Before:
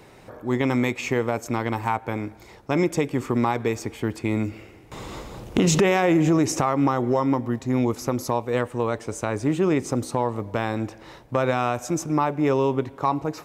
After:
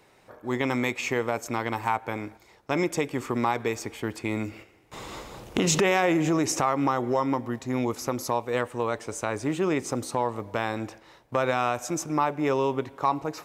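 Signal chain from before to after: gate -40 dBFS, range -7 dB; low shelf 390 Hz -8 dB

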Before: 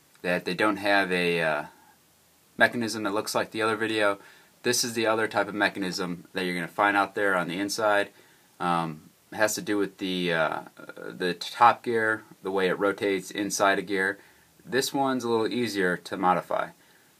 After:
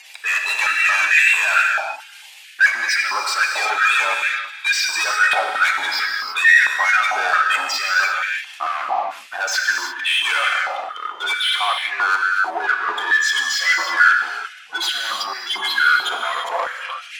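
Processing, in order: gliding pitch shift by -3.5 st starting unshifted; spectral gate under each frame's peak -15 dB strong; resonant high shelf 1700 Hz +14 dB, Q 3; sample leveller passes 2; limiter -8.5 dBFS, peak gain reduction 8 dB; reverse; compressor, threshold -27 dBFS, peak gain reduction 14 dB; reverse; overdrive pedal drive 15 dB, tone 3700 Hz, clips at -15.5 dBFS; sine folder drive 5 dB, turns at -15.5 dBFS; non-linear reverb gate 0.37 s flat, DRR 1 dB; stepped high-pass 4.5 Hz 810–1800 Hz; gain -4.5 dB

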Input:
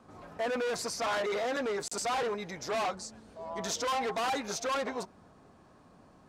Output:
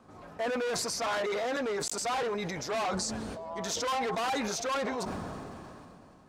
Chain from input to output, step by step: sustainer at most 20 dB/s

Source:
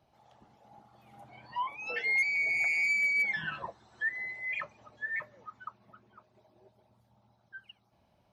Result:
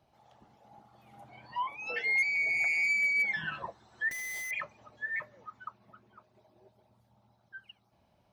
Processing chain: 4.11–4.51 Schmitt trigger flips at -49 dBFS

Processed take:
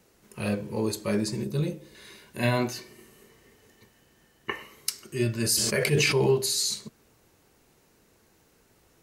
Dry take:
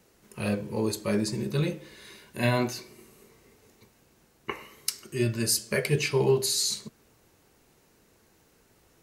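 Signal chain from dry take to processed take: 1.44–1.95 bell 1900 Hz -8.5 dB 2.5 oct; 2.73–4.62 small resonant body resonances 1800/3000 Hz, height 13 dB -> 16 dB; 5.37–6.27 sustainer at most 23 dB/s

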